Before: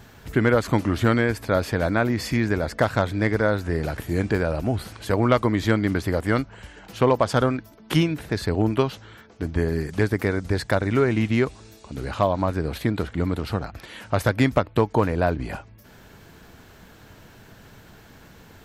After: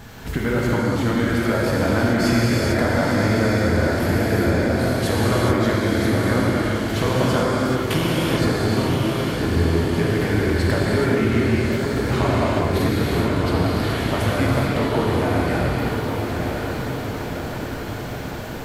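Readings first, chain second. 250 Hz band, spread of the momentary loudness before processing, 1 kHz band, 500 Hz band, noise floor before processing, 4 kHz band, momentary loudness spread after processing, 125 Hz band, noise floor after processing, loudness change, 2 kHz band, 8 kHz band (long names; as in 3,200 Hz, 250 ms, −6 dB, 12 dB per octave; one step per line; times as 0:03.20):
+4.5 dB, 9 LU, +3.0 dB, +2.5 dB, −49 dBFS, +7.0 dB, 7 LU, +4.5 dB, −29 dBFS, +3.0 dB, +4.0 dB, +8.0 dB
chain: downward compressor, threshold −29 dBFS, peak gain reduction 15 dB
feedback delay with all-pass diffusion 984 ms, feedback 66%, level −5 dB
reverb whose tail is shaped and stops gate 460 ms flat, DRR −5.5 dB
level +5.5 dB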